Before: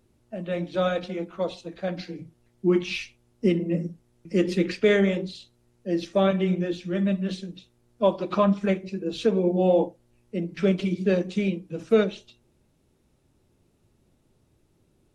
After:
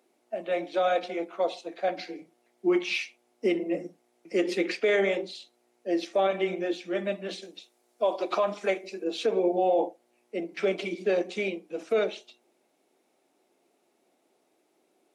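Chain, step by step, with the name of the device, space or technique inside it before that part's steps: laptop speaker (HPF 300 Hz 24 dB/oct; bell 720 Hz +9.5 dB 0.34 oct; bell 2200 Hz +5.5 dB 0.24 oct; limiter -16 dBFS, peak gain reduction 8 dB); 7.42–9.04 tone controls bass -6 dB, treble +6 dB

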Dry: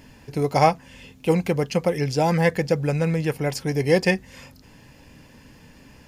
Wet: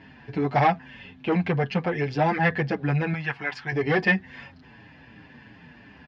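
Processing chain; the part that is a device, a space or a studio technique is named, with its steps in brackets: 3.13–3.72 resonant low shelf 710 Hz -10 dB, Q 1.5; barber-pole flanger into a guitar amplifier (endless flanger 6.9 ms -2.9 Hz; soft clip -18 dBFS, distortion -13 dB; speaker cabinet 87–3700 Hz, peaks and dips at 520 Hz -7 dB, 740 Hz +4 dB, 1700 Hz +7 dB); gain +3.5 dB

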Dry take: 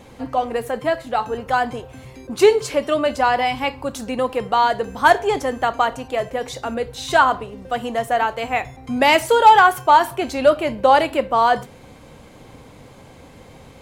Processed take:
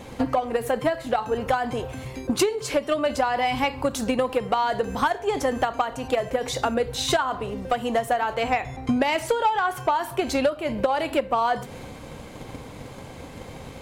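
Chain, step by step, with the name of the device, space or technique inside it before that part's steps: 8.34–9.96 high shelf 10000 Hz -9.5 dB; drum-bus smash (transient shaper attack +8 dB, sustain +3 dB; compressor 10:1, threshold -21 dBFS, peak gain reduction 20 dB; soft clip -14.5 dBFS, distortion -19 dB); gain +3 dB

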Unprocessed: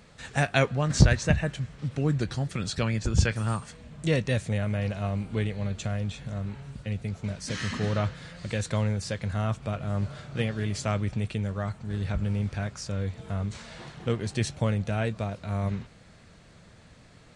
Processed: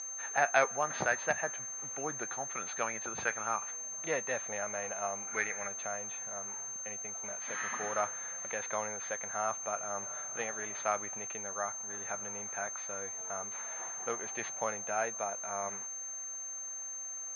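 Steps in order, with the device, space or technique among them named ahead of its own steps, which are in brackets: 5.27–5.68 band shelf 1800 Hz +10 dB 1.1 oct; toy sound module (decimation joined by straight lines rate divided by 4×; pulse-width modulation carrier 6300 Hz; speaker cabinet 700–4600 Hz, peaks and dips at 770 Hz +6 dB, 1300 Hz +3 dB, 3000 Hz -8 dB)

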